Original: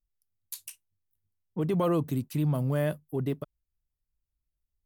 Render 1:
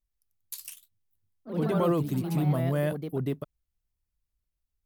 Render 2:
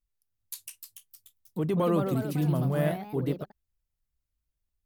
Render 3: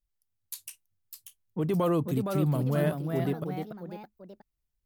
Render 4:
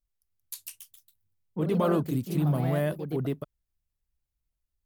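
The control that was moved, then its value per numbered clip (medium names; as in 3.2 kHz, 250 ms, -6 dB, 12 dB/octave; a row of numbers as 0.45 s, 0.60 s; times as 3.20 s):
ever faster or slower copies, time: 116 ms, 361 ms, 661 ms, 201 ms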